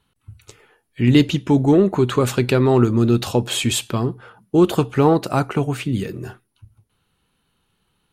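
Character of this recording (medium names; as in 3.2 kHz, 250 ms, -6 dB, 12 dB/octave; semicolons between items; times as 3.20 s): noise floor -70 dBFS; spectral tilt -6.5 dB/octave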